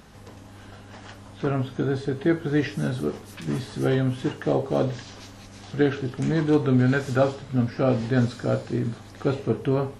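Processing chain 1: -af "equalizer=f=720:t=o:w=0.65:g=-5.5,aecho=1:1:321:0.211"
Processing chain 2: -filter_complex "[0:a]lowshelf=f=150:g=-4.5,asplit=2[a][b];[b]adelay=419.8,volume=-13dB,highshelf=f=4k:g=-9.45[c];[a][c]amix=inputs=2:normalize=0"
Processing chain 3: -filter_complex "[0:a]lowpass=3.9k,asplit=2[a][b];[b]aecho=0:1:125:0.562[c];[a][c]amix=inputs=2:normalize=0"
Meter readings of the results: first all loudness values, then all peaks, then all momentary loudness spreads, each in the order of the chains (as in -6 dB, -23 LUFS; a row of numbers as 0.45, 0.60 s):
-25.5, -26.0, -24.0 LUFS; -10.0, -9.0, -9.0 dBFS; 17, 16, 11 LU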